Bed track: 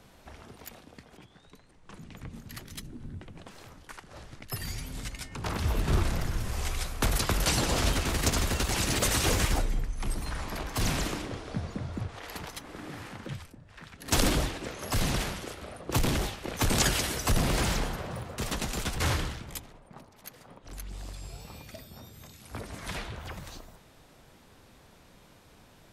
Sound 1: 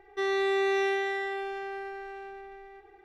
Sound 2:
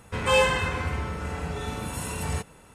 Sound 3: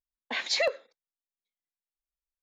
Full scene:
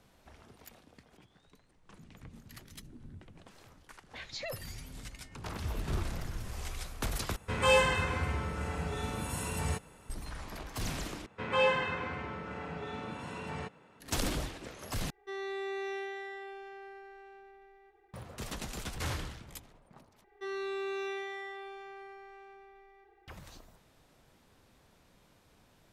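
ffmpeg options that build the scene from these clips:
-filter_complex "[2:a]asplit=2[s0][s1];[1:a]asplit=2[s2][s3];[0:a]volume=0.398[s4];[s1]highpass=150,lowpass=3400[s5];[s3]asplit=2[s6][s7];[s7]adelay=34,volume=0.596[s8];[s6][s8]amix=inputs=2:normalize=0[s9];[s4]asplit=5[s10][s11][s12][s13][s14];[s10]atrim=end=7.364[s15];[s0]atrim=end=2.74,asetpts=PTS-STARTPTS,volume=0.631[s16];[s11]atrim=start=10.096:end=11.264[s17];[s5]atrim=end=2.74,asetpts=PTS-STARTPTS,volume=0.501[s18];[s12]atrim=start=13.996:end=15.104[s19];[s2]atrim=end=3.04,asetpts=PTS-STARTPTS,volume=0.282[s20];[s13]atrim=start=18.136:end=20.244[s21];[s9]atrim=end=3.04,asetpts=PTS-STARTPTS,volume=0.316[s22];[s14]atrim=start=23.276[s23];[3:a]atrim=end=2.42,asetpts=PTS-STARTPTS,volume=0.2,afade=t=in:d=0.004:c=hsin,afade=t=out:st=2.416:d=0.004:c=hsin,adelay=3830[s24];[s15][s16]acrossfade=d=0.004:c1=hsin:c2=hsin[s25];[s25][s17]acrossfade=d=0.004:c1=hsin:c2=hsin[s26];[s26][s18]acrossfade=d=0.004:c1=hsin:c2=hsin[s27];[s27][s19]acrossfade=d=0.004:c1=hsin:c2=hsin[s28];[s28][s20]acrossfade=d=0.004:c1=hsin:c2=hsin[s29];[s29][s21]acrossfade=d=0.004:c1=hsin:c2=hsin[s30];[s30][s22]acrossfade=d=0.004:c1=hsin:c2=hsin[s31];[s31][s23]acrossfade=d=0.004:c1=hsin:c2=hsin[s32];[s32][s24]amix=inputs=2:normalize=0"

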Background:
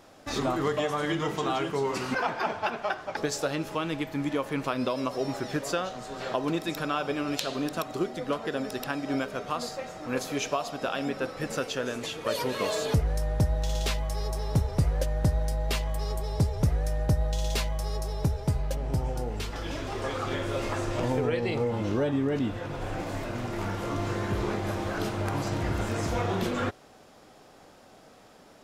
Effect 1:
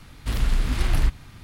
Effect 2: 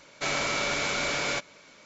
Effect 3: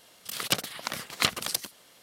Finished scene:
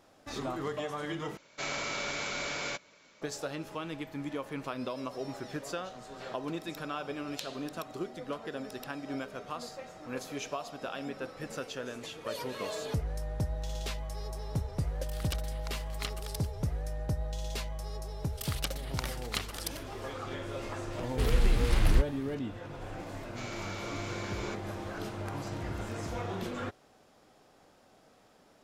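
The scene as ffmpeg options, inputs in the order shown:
-filter_complex "[2:a]asplit=2[s0][s1];[3:a]asplit=2[s2][s3];[0:a]volume=0.398[s4];[s3]dynaudnorm=f=150:g=3:m=4.73[s5];[s4]asplit=2[s6][s7];[s6]atrim=end=1.374[s8];[s0]atrim=end=1.85,asetpts=PTS-STARTPTS,volume=0.447[s9];[s7]atrim=start=3.216[s10];[s2]atrim=end=2.02,asetpts=PTS-STARTPTS,volume=0.2,afade=t=in:d=0.004:c=hsin,afade=t=out:st=2.016:d=0.004:c=hsin,adelay=14800[s11];[s5]atrim=end=2.02,asetpts=PTS-STARTPTS,volume=0.2,afade=t=in:d=0.004:c=hsin,afade=t=out:st=2.016:d=0.004:c=hsin,adelay=799092S[s12];[1:a]atrim=end=1.43,asetpts=PTS-STARTPTS,volume=0.668,afade=t=in:d=0.004:c=hsin,afade=t=out:st=1.426:d=0.004:c=hsin,adelay=20920[s13];[s1]atrim=end=1.85,asetpts=PTS-STARTPTS,volume=0.178,afade=t=in:d=0.004:c=hsin,afade=t=out:st=1.846:d=0.004:c=hsin,adelay=23150[s14];[s8][s9]acrossfade=d=0.004:c1=hsin:c2=hsin[s15];[s15][s10]acrossfade=d=0.004:c1=hsin:c2=hsin[s16];[s16][s11][s12][s13][s14]amix=inputs=5:normalize=0"

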